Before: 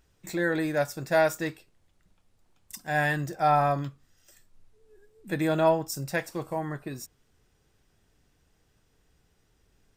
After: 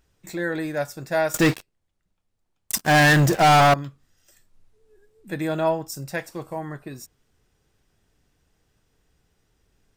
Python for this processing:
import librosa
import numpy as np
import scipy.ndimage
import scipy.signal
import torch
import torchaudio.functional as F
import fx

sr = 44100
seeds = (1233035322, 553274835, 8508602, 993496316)

y = fx.leveller(x, sr, passes=5, at=(1.34, 3.74))